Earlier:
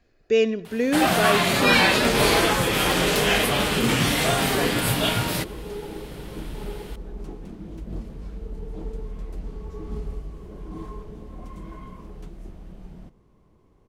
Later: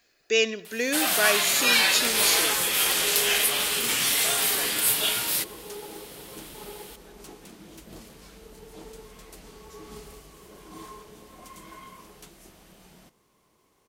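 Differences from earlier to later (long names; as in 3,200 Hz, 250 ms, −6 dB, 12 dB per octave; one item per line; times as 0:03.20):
first sound −8.0 dB
master: add spectral tilt +4.5 dB per octave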